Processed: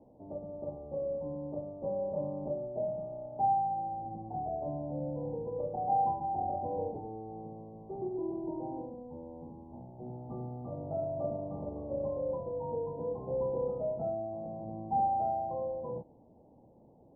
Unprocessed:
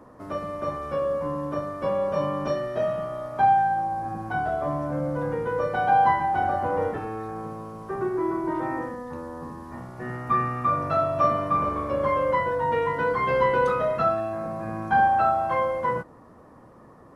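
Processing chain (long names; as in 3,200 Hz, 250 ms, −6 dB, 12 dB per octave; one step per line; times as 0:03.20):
Chebyshev low-pass filter 870 Hz, order 6
level −8.5 dB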